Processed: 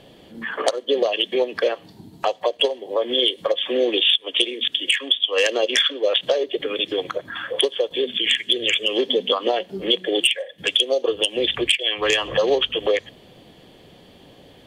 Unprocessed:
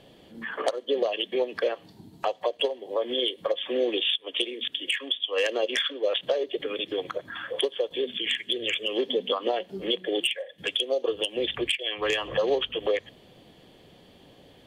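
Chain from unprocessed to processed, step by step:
dynamic equaliser 6,300 Hz, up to +7 dB, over −44 dBFS, Q 0.7
level +5.5 dB

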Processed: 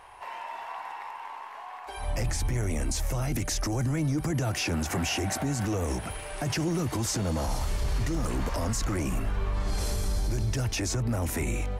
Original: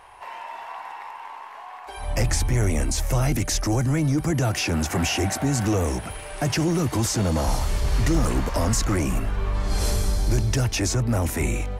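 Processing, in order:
brickwall limiter −19 dBFS, peak gain reduction 8 dB
level −2 dB

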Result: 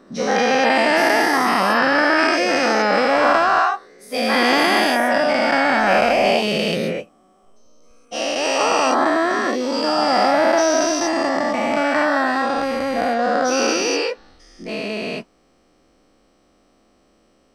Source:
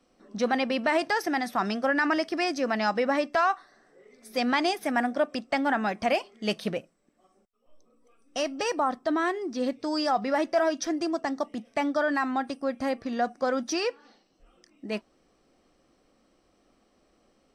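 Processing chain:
every bin's largest magnitude spread in time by 480 ms
level +1 dB

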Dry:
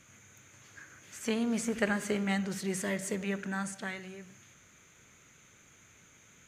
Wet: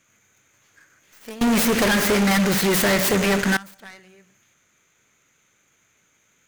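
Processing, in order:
stylus tracing distortion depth 0.36 ms
low-shelf EQ 190 Hz −9 dB
0:01.41–0:03.57: fuzz pedal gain 44 dB, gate −49 dBFS
level −3 dB

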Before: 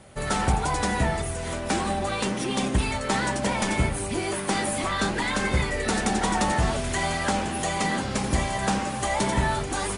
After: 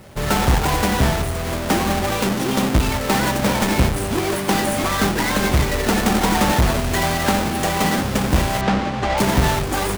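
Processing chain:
each half-wave held at its own peak
0:08.61–0:09.18: high-frequency loss of the air 140 metres
level +2 dB

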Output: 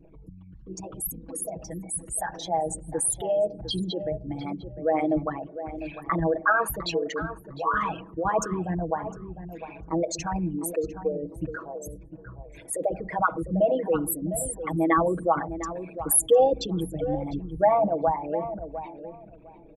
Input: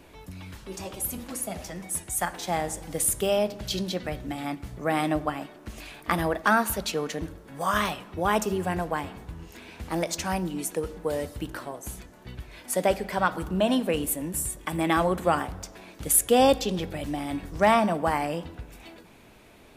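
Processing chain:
spectral envelope exaggerated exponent 3
comb filter 6.2 ms, depth 88%
tape delay 704 ms, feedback 21%, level −10 dB, low-pass 1,400 Hz
level −2.5 dB

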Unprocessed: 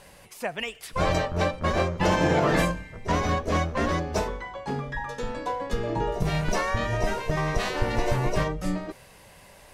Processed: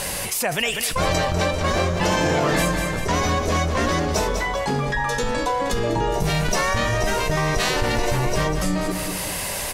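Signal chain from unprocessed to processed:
high-shelf EQ 3,900 Hz +10.5 dB
on a send: repeating echo 197 ms, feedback 35%, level −13.5 dB
on the sum: envelope flattener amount 70%

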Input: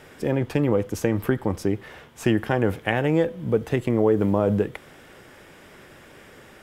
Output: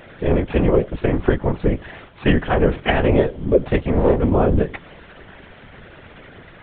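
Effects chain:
0:03.78–0:04.22: gain on one half-wave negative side −12 dB
one-pitch LPC vocoder at 8 kHz 230 Hz
random phases in short frames
level +6 dB

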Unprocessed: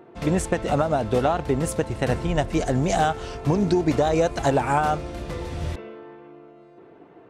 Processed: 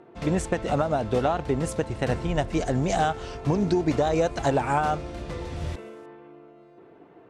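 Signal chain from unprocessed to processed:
0:05.56–0:06.06: variable-slope delta modulation 64 kbit/s
low-pass filter 9,100 Hz 12 dB per octave
level −2.5 dB

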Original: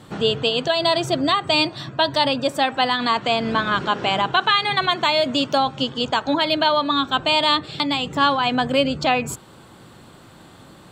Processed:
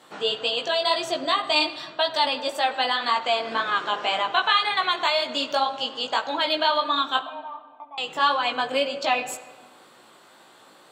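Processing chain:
high-pass filter 480 Hz 12 dB per octave
chorus effect 1.9 Hz, delay 16.5 ms, depth 3.2 ms
0:07.21–0:07.98: formant resonators in series a
on a send: convolution reverb RT60 1.4 s, pre-delay 8 ms, DRR 11 dB

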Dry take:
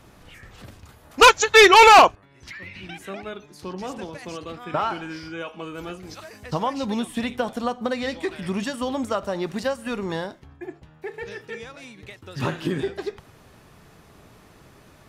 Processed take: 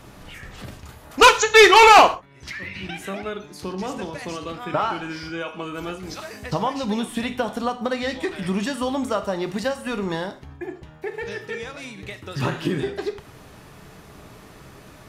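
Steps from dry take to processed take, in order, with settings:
in parallel at +1 dB: downward compressor, threshold −35 dBFS, peak gain reduction 24 dB
on the sum: reverb whose tail is shaped and stops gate 160 ms falling, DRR 8.5 dB
level −1 dB

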